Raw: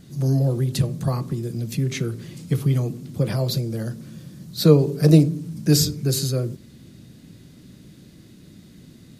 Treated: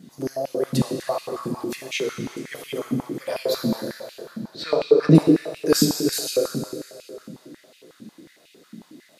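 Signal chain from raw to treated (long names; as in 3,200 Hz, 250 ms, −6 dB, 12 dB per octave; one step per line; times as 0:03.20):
0:04.26–0:05.15: low-pass filter 3,900 Hz 12 dB per octave
dense smooth reverb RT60 2.9 s, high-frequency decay 0.75×, DRR 0.5 dB
high-pass on a step sequencer 11 Hz 220–2,600 Hz
level −3 dB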